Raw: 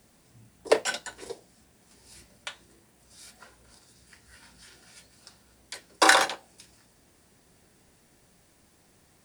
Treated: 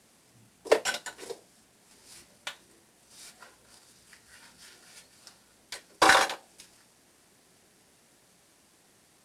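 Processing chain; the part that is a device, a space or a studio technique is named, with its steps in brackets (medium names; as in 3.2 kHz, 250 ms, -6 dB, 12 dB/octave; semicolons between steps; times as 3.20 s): early wireless headset (high-pass 210 Hz 6 dB/octave; CVSD coder 64 kbps)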